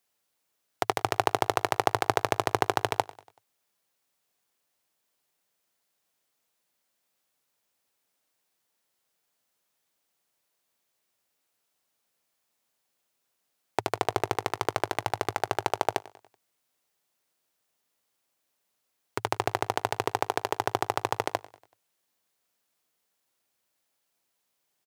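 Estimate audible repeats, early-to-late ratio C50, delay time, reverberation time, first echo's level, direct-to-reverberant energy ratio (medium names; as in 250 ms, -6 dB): 3, no reverb, 95 ms, no reverb, -20.0 dB, no reverb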